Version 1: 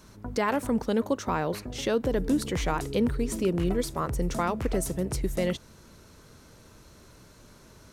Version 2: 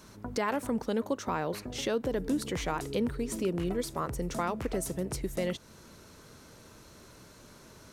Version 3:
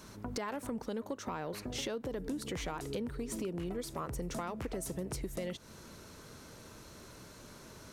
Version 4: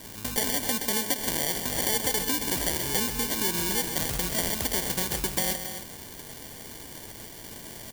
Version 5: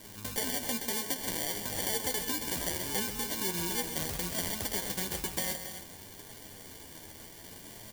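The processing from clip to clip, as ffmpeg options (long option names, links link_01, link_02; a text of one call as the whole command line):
ffmpeg -i in.wav -filter_complex "[0:a]asplit=2[link_01][link_02];[link_02]acompressor=threshold=-35dB:ratio=6,volume=3dB[link_03];[link_01][link_03]amix=inputs=2:normalize=0,lowshelf=frequency=92:gain=-8,volume=-6.5dB" out.wav
ffmpeg -i in.wav -af "acompressor=threshold=-35dB:ratio=6,asoftclip=type=tanh:threshold=-27.5dB,volume=1dB" out.wav
ffmpeg -i in.wav -filter_complex "[0:a]acrusher=samples=34:mix=1:aa=0.000001,asplit=2[link_01][link_02];[link_02]aecho=0:1:131.2|274.1:0.355|0.316[link_03];[link_01][link_03]amix=inputs=2:normalize=0,crystalizer=i=6.5:c=0,volume=4dB" out.wav
ffmpeg -i in.wav -af "flanger=delay=9.6:depth=3.1:regen=39:speed=0.63:shape=sinusoidal,volume=-2dB" out.wav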